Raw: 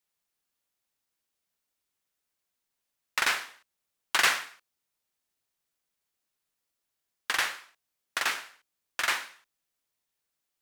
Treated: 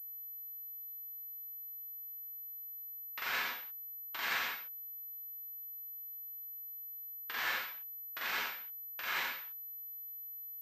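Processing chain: reverse; compression 5:1, threshold -39 dBFS, peak gain reduction 18.5 dB; reverse; gated-style reverb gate 100 ms rising, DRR -5 dB; class-D stage that switches slowly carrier 12 kHz; trim -1.5 dB

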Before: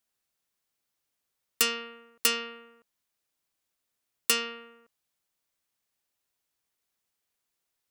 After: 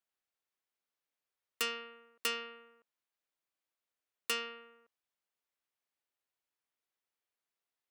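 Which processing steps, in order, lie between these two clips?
tone controls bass -9 dB, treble -8 dB; trim -6 dB

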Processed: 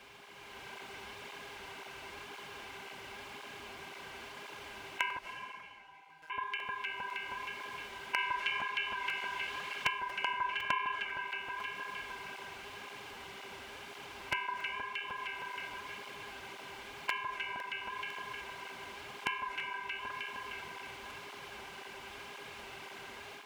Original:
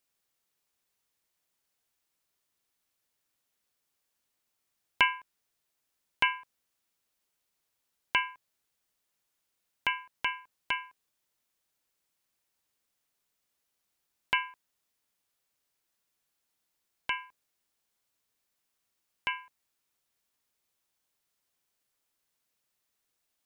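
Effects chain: spectral levelling over time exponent 0.6; low-pass 3.8 kHz 6 dB/octave; echo whose repeats swap between lows and highs 156 ms, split 1.5 kHz, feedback 68%, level -6.5 dB; compression 4:1, threshold -52 dBFS, peak gain reduction 26 dB; 10.40–10.80 s: peaking EQ 1.2 kHz +10.5 dB 0.44 oct; mains buzz 400 Hz, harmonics 9, -70 dBFS -4 dB/octave; 5.18–6.30 s: feedback comb 160 Hz, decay 1.1 s, mix 100%; reverberation RT60 2.2 s, pre-delay 205 ms, DRR 7 dB; level rider gain up to 6 dB; 8.18–9.88 s: peaking EQ 3 kHz +5 dB 2.9 oct; crackling interface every 0.50 s, samples 64, repeat, from 0.60 s; cancelling through-zero flanger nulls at 1.9 Hz, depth 7.5 ms; trim +11 dB

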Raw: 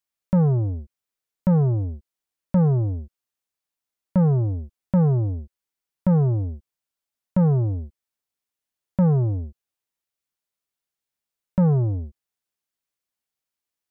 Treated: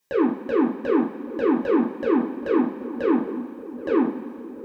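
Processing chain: compressor with a negative ratio -29 dBFS, ratio -1; peak limiter -29 dBFS, peak gain reduction 9 dB; comb of notches 230 Hz; wide varispeed 2.99×; on a send: filtered feedback delay 779 ms, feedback 72%, low-pass 900 Hz, level -13 dB; on the sum: two-slope reverb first 0.31 s, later 2.5 s, from -17 dB, DRR -2.5 dB; trim +8 dB

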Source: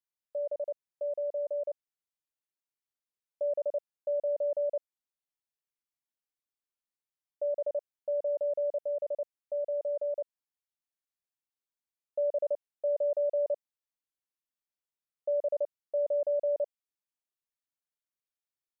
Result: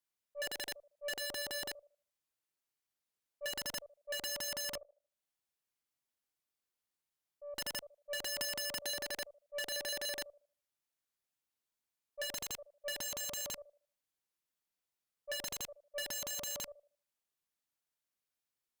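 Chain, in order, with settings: slow attack 206 ms; 4.75–7.55 s: compression 2:1, threshold -57 dBFS, peak gain reduction 15 dB; on a send: thinning echo 77 ms, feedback 40%, high-pass 630 Hz, level -19 dB; on the sum: integer overflow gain 37.5 dB; Chebyshev shaper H 4 -23 dB, 7 -45 dB, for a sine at -37.5 dBFS; 8.38–9.02 s: three bands compressed up and down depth 100%; trim +3.5 dB

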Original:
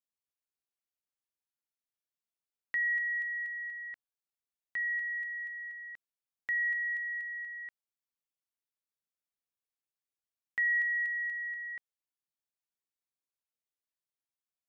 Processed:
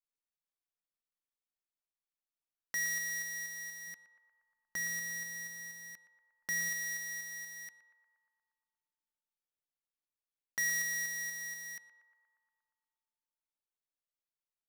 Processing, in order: dead-time distortion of 0.13 ms; 3.87–6.69 s: bass shelf 500 Hz +8 dB; band-passed feedback delay 118 ms, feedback 77%, band-pass 1 kHz, level -10 dB

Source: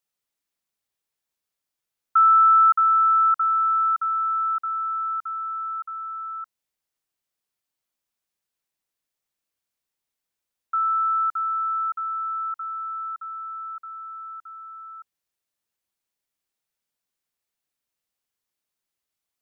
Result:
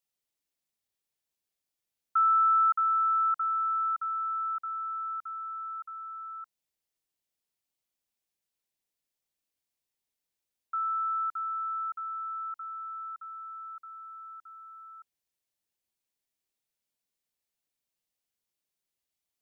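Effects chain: peaking EQ 1.3 kHz -5.5 dB 1 oct; trim -2.5 dB

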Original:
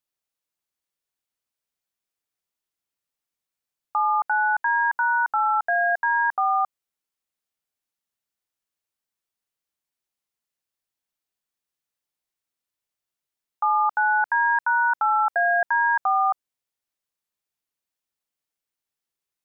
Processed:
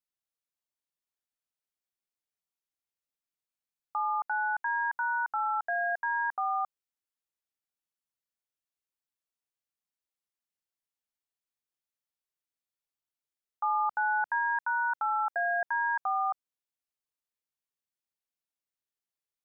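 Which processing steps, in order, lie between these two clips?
13.63–14.39 s: bass shelf 470 Hz +6 dB; trim -8.5 dB

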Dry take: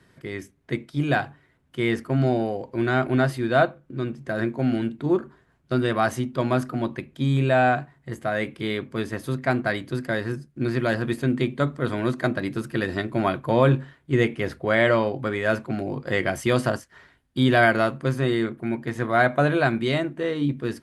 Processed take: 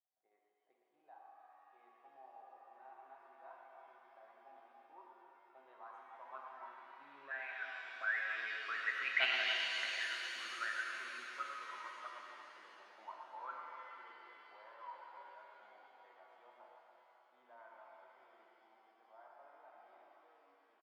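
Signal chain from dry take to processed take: rattle on loud lows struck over -24 dBFS, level -26 dBFS; Doppler pass-by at 9.26 s, 10 m/s, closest 1.9 m; in parallel at 0 dB: level held to a coarse grid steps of 22 dB; on the sum: high-pass 400 Hz 12 dB/octave; loudspeakers at several distances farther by 40 m -7 dB, 95 m -12 dB; auto-wah 750–2900 Hz, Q 14, up, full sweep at -29.5 dBFS; pitch-shifted reverb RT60 3.6 s, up +7 st, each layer -8 dB, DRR -0.5 dB; trim +9 dB

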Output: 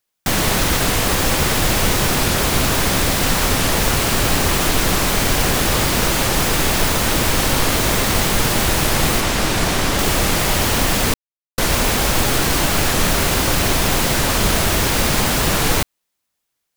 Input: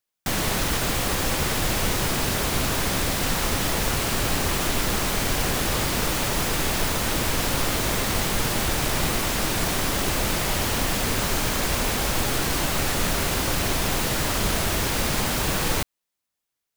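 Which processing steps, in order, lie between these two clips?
9.20–9.99 s: treble shelf 11 kHz -9 dB; 11.14–11.59 s: mute; warped record 45 rpm, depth 160 cents; trim +7 dB

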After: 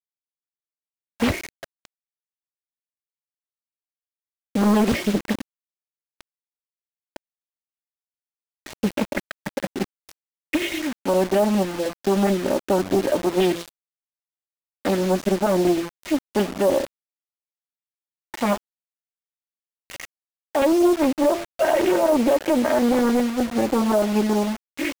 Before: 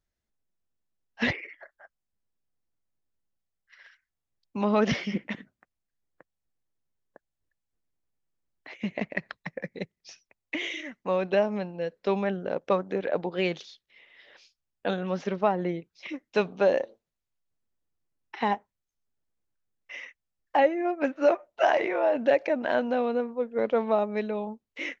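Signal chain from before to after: LFO notch saw up 9.7 Hz 570–3300 Hz; bass shelf 450 Hz +10.5 dB; comb 3.2 ms, depth 73%; peak limiter -15 dBFS, peak gain reduction 11 dB; de-hum 170.7 Hz, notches 25; word length cut 6-bit, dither none; loudspeaker Doppler distortion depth 0.73 ms; trim +4.5 dB

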